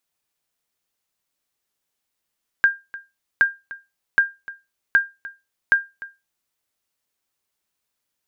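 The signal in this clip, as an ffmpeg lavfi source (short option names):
-f lavfi -i "aevalsrc='0.447*(sin(2*PI*1600*mod(t,0.77))*exp(-6.91*mod(t,0.77)/0.23)+0.112*sin(2*PI*1600*max(mod(t,0.77)-0.3,0))*exp(-6.91*max(mod(t,0.77)-0.3,0)/0.23))':d=3.85:s=44100"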